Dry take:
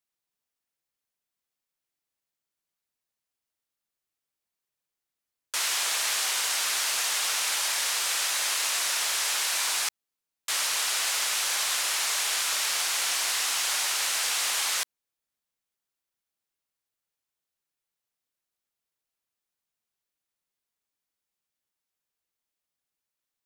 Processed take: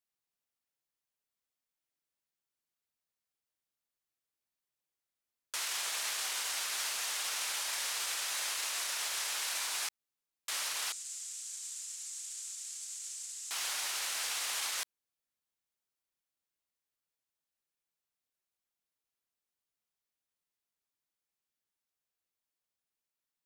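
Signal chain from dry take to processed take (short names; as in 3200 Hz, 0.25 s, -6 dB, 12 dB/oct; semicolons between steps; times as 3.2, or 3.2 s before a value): limiter -22 dBFS, peak gain reduction 7.5 dB; 10.92–13.51 band-pass 7500 Hz, Q 3.7; gain -4.5 dB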